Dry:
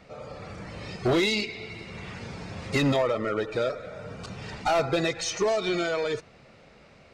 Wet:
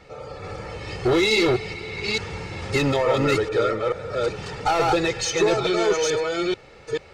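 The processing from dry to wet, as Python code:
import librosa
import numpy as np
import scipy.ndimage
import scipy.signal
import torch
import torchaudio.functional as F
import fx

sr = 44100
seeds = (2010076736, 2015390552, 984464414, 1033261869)

p1 = fx.reverse_delay(x, sr, ms=436, wet_db=-1.0)
p2 = p1 + 0.5 * np.pad(p1, (int(2.3 * sr / 1000.0), 0))[:len(p1)]
p3 = fx.fold_sine(p2, sr, drive_db=4, ceiling_db=-10.0)
p4 = p2 + (p3 * librosa.db_to_amplitude(-8.0))
y = p4 * librosa.db_to_amplitude(-3.0)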